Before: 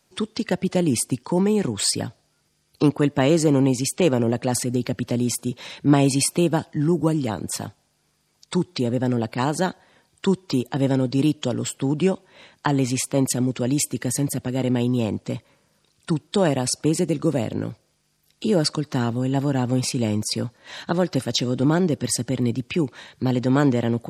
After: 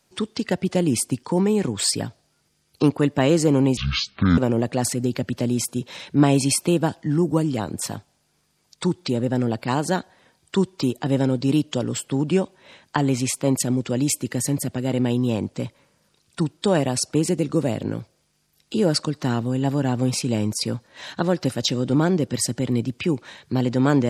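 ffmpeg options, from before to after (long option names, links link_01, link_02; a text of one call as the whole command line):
ffmpeg -i in.wav -filter_complex "[0:a]asplit=3[link_01][link_02][link_03];[link_01]atrim=end=3.774[link_04];[link_02]atrim=start=3.77:end=4.08,asetpts=PTS-STARTPTS,asetrate=22491,aresample=44100[link_05];[link_03]atrim=start=4.076[link_06];[link_04][link_05]acrossfade=duration=0.004:curve1=hsin:curve2=hsin[link_07];[link_07][link_06]acrossfade=duration=0.004:curve1=hsin:curve2=hsin" out.wav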